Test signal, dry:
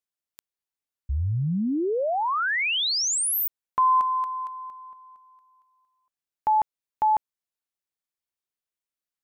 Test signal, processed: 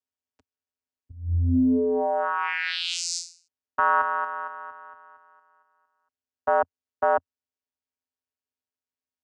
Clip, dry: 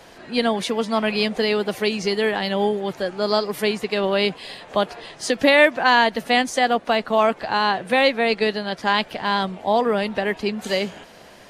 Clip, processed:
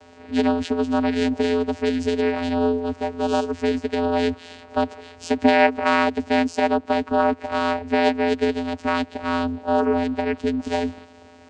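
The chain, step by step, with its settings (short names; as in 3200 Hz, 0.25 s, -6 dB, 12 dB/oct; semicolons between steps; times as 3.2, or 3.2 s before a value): high shelf 6100 Hz +8.5 dB; vocoder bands 8, square 85.9 Hz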